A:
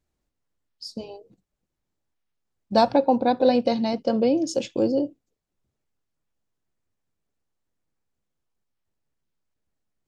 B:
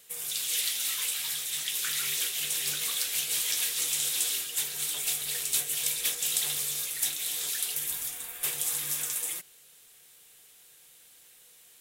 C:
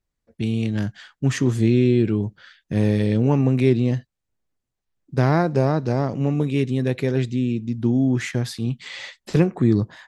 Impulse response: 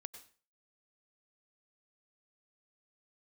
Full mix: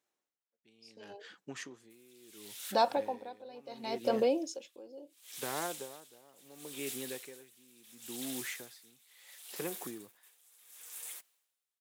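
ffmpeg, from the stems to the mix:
-filter_complex "[0:a]bandreject=frequency=4600:width=12,alimiter=limit=-15.5dB:level=0:latency=1:release=75,volume=1dB,asplit=2[link_01][link_02];[1:a]alimiter=limit=-21dB:level=0:latency=1:release=31,acrusher=bits=7:dc=4:mix=0:aa=0.000001,adelay=1800,volume=-10.5dB[link_03];[2:a]acompressor=threshold=-19dB:ratio=3,adelay=250,volume=-8dB[link_04];[link_02]apad=whole_len=600004[link_05];[link_03][link_05]sidechaincompress=threshold=-43dB:ratio=6:attack=29:release=214[link_06];[link_01][link_06][link_04]amix=inputs=3:normalize=0,highpass=470,bandreject=frequency=650:width=14,aeval=exprs='val(0)*pow(10,-23*(0.5-0.5*cos(2*PI*0.72*n/s))/20)':channel_layout=same"

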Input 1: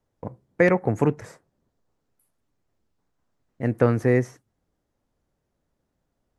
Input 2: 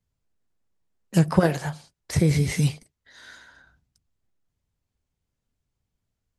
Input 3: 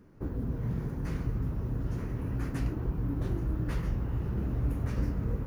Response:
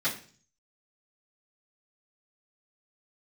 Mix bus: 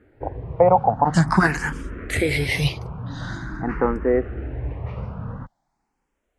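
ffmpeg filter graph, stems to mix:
-filter_complex "[0:a]lowpass=frequency=800:width_type=q:width=4.9,volume=-3dB[link_01];[1:a]volume=1dB[link_02];[2:a]lowpass=1900,volume=2.5dB[link_03];[link_01][link_02][link_03]amix=inputs=3:normalize=0,equalizer=frequency=1900:width=0.41:gain=11.5,asplit=2[link_04][link_05];[link_05]afreqshift=0.46[link_06];[link_04][link_06]amix=inputs=2:normalize=1"

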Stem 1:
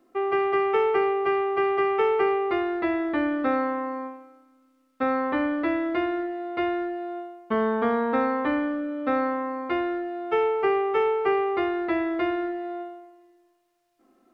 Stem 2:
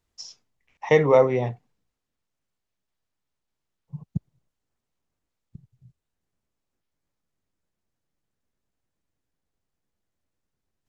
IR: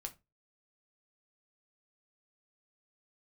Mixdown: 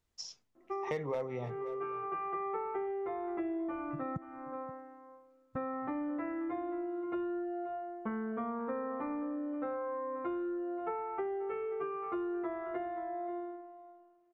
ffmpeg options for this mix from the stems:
-filter_complex "[0:a]lowpass=1400,aecho=1:1:5.9:0.36,asplit=2[link_01][link_02];[link_02]adelay=8.8,afreqshift=0.6[link_03];[link_01][link_03]amix=inputs=2:normalize=1,adelay=550,volume=-0.5dB,asplit=2[link_04][link_05];[link_05]volume=-17dB[link_06];[1:a]volume=9.5dB,asoftclip=hard,volume=-9.5dB,volume=-4dB,asplit=3[link_07][link_08][link_09];[link_08]volume=-24dB[link_10];[link_09]apad=whole_len=657107[link_11];[link_04][link_11]sidechaincompress=threshold=-37dB:ratio=8:attack=12:release=592[link_12];[link_06][link_10]amix=inputs=2:normalize=0,aecho=0:1:528:1[link_13];[link_12][link_07][link_13]amix=inputs=3:normalize=0,acompressor=threshold=-36dB:ratio=4"

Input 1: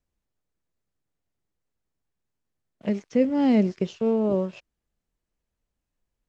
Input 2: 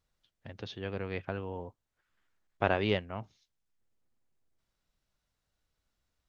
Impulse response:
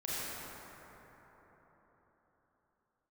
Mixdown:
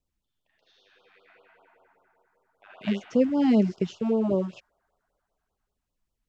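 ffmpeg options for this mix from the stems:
-filter_complex "[0:a]volume=-0.5dB,asplit=2[link_01][link_02];[1:a]highpass=910,volume=-6dB,asplit=2[link_03][link_04];[link_04]volume=-11dB[link_05];[link_02]apad=whole_len=277281[link_06];[link_03][link_06]sidechaingate=range=-33dB:threshold=-52dB:ratio=16:detection=peak[link_07];[2:a]atrim=start_sample=2205[link_08];[link_05][link_08]afir=irnorm=-1:irlink=0[link_09];[link_01][link_07][link_09]amix=inputs=3:normalize=0,afftfilt=real='re*(1-between(b*sr/1024,410*pow(2100/410,0.5+0.5*sin(2*PI*5.1*pts/sr))/1.41,410*pow(2100/410,0.5+0.5*sin(2*PI*5.1*pts/sr))*1.41))':imag='im*(1-between(b*sr/1024,410*pow(2100/410,0.5+0.5*sin(2*PI*5.1*pts/sr))/1.41,410*pow(2100/410,0.5+0.5*sin(2*PI*5.1*pts/sr))*1.41))':win_size=1024:overlap=0.75"

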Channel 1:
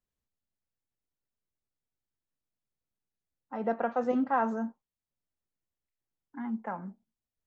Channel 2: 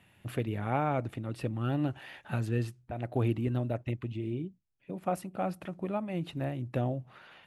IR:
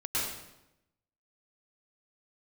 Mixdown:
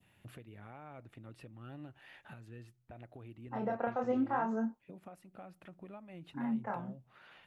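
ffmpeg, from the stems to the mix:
-filter_complex "[0:a]acompressor=threshold=-31dB:ratio=2,flanger=delay=22.5:depth=7.4:speed=0.65,volume=1.5dB[link_01];[1:a]adynamicequalizer=threshold=0.00447:dfrequency=1800:dqfactor=0.76:tfrequency=1800:tqfactor=0.76:attack=5:release=100:ratio=0.375:range=2:mode=boostabove:tftype=bell,acompressor=threshold=-48dB:ratio=2,alimiter=level_in=10dB:limit=-24dB:level=0:latency=1:release=500,volume=-10dB,volume=-5dB[link_02];[link_01][link_02]amix=inputs=2:normalize=0"

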